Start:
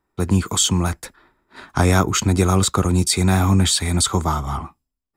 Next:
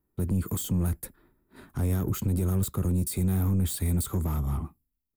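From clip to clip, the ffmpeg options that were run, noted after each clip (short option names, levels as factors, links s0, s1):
-af "alimiter=limit=0.237:level=0:latency=1:release=69,asoftclip=type=tanh:threshold=0.112,firequalizer=gain_entry='entry(170,0);entry(810,-14);entry(6000,-16);entry(12000,6)':delay=0.05:min_phase=1"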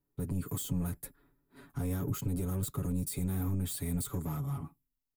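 -af "aecho=1:1:7.1:0.98,volume=0.398"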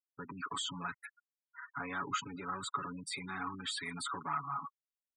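-af "highpass=300,lowpass=4100,lowshelf=f=780:t=q:w=1.5:g=-14,afftfilt=real='re*gte(hypot(re,im),0.00316)':imag='im*gte(hypot(re,im),0.00316)':win_size=1024:overlap=0.75,volume=3.76"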